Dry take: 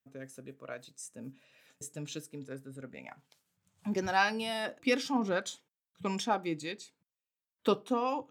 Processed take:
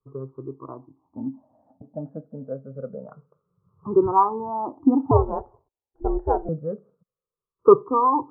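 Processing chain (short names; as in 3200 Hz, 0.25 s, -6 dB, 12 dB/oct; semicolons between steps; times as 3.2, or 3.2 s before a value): moving spectral ripple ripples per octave 0.63, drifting -0.26 Hz, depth 22 dB; steep low-pass 1200 Hz 72 dB/oct; 5.11–6.49 ring modulator 160 Hz; gain +7.5 dB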